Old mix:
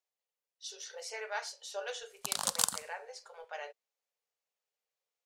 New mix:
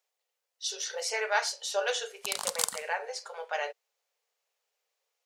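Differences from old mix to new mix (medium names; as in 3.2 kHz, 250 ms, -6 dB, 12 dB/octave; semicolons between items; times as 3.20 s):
speech +10.5 dB; master: add peaking EQ 120 Hz -7 dB 2 oct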